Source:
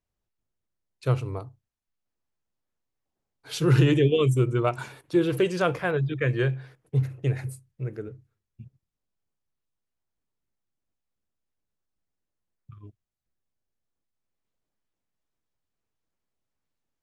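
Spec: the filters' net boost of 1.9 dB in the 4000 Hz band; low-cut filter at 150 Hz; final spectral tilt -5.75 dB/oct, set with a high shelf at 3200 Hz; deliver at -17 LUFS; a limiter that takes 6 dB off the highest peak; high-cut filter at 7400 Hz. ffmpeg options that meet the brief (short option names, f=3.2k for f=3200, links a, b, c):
-af "highpass=150,lowpass=7.4k,highshelf=f=3.2k:g=-3,equalizer=f=4k:t=o:g=5,volume=11dB,alimiter=limit=-4.5dB:level=0:latency=1"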